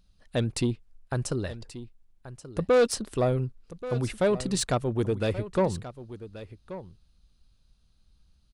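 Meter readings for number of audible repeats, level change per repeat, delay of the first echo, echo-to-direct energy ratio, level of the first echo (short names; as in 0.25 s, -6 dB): 1, no steady repeat, 1.131 s, -14.5 dB, -14.5 dB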